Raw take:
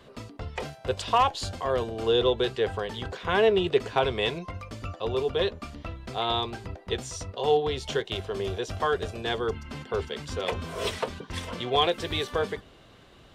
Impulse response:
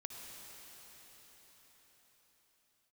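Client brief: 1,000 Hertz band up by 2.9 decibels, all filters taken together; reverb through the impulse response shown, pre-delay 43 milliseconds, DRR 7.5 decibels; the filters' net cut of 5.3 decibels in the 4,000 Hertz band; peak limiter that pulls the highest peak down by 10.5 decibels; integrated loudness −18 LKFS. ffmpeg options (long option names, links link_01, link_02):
-filter_complex "[0:a]equalizer=frequency=1000:width_type=o:gain=4,equalizer=frequency=4000:width_type=o:gain=-7,alimiter=limit=-18.5dB:level=0:latency=1,asplit=2[link_01][link_02];[1:a]atrim=start_sample=2205,adelay=43[link_03];[link_02][link_03]afir=irnorm=-1:irlink=0,volume=-5dB[link_04];[link_01][link_04]amix=inputs=2:normalize=0,volume=12.5dB"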